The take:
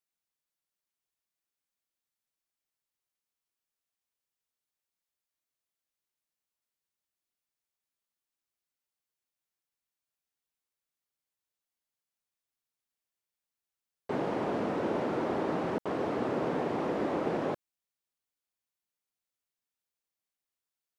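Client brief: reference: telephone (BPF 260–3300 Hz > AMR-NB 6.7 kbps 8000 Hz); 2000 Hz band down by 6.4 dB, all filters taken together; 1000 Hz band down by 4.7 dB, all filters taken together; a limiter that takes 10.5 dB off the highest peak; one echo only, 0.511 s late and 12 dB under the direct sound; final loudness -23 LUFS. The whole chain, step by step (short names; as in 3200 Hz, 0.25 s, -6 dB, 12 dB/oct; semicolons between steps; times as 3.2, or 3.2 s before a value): bell 1000 Hz -5 dB; bell 2000 Hz -6 dB; limiter -29.5 dBFS; BPF 260–3300 Hz; echo 0.511 s -12 dB; gain +18 dB; AMR-NB 6.7 kbps 8000 Hz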